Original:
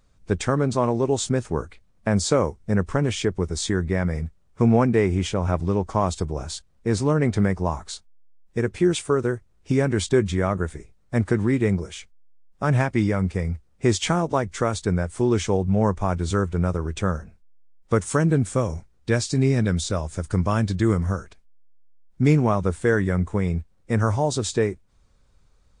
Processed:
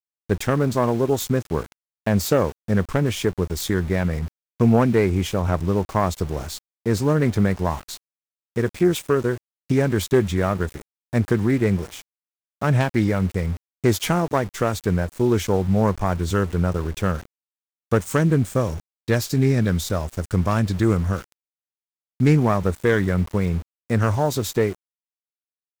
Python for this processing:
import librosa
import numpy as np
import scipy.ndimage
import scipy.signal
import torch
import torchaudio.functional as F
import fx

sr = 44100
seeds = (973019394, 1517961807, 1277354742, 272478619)

y = fx.self_delay(x, sr, depth_ms=0.14)
y = np.where(np.abs(y) >= 10.0 ** (-36.0 / 20.0), y, 0.0)
y = F.gain(torch.from_numpy(y), 1.5).numpy()